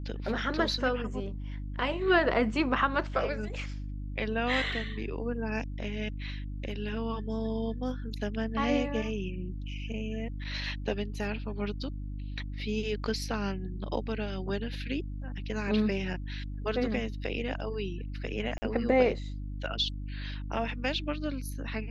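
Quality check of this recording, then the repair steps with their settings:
hum 50 Hz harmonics 6 -37 dBFS
18.58–18.62 s: dropout 40 ms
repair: de-hum 50 Hz, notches 6; interpolate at 18.58 s, 40 ms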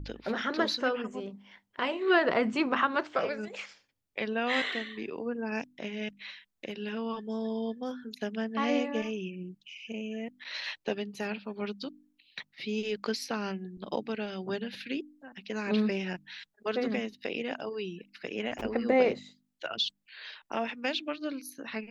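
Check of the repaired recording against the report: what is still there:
nothing left

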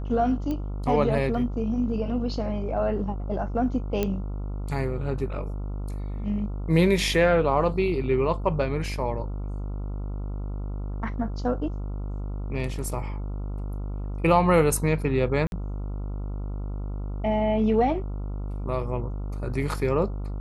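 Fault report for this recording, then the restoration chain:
buzz 50 Hz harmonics 28 -31 dBFS
0.51 s: pop -19 dBFS
4.03 s: pop -12 dBFS
15.47–15.52 s: dropout 51 ms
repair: de-click; de-hum 50 Hz, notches 28; interpolate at 15.47 s, 51 ms

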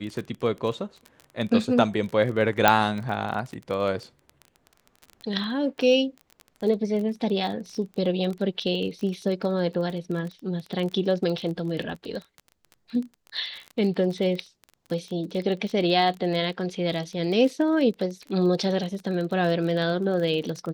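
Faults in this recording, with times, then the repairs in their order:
crackle 25 per s -31 dBFS
2.68 s: pop -2 dBFS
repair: de-click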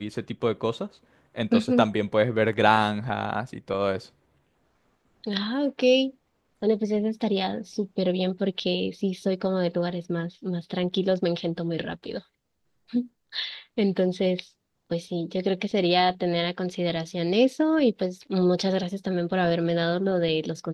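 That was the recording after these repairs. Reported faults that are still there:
nothing left

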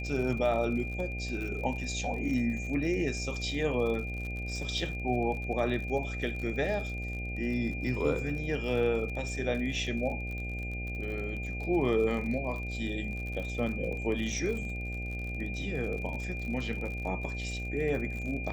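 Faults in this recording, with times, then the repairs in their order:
buzz 60 Hz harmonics 13 -37 dBFS
crackle 49 per s -37 dBFS
whine 2.4 kHz -39 dBFS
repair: de-click; band-stop 2.4 kHz, Q 30; de-hum 60 Hz, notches 13

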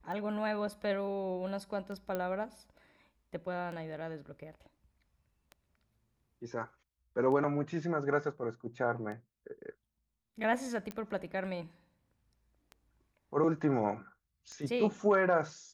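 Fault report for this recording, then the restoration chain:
tick 33 1/3 rpm -32 dBFS
2.15 s: pop -22 dBFS
10.91 s: pop -26 dBFS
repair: de-click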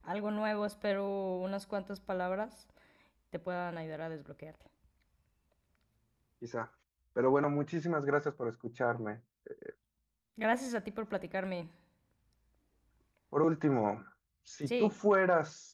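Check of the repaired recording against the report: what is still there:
nothing left

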